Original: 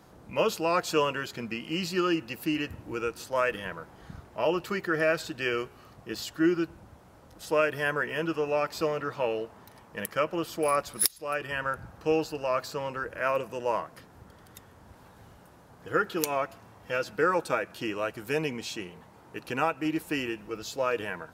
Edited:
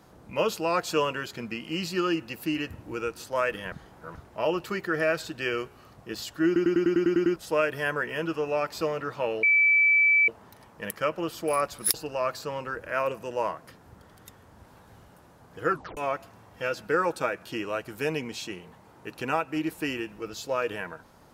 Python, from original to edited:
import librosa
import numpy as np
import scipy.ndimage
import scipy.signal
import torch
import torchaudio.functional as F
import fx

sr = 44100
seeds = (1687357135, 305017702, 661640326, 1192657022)

y = fx.edit(x, sr, fx.reverse_span(start_s=3.72, length_s=0.43),
    fx.stutter_over(start_s=6.46, slice_s=0.1, count=9),
    fx.insert_tone(at_s=9.43, length_s=0.85, hz=2310.0, db=-17.0),
    fx.cut(start_s=11.09, length_s=1.14),
    fx.tape_stop(start_s=15.99, length_s=0.27), tone=tone)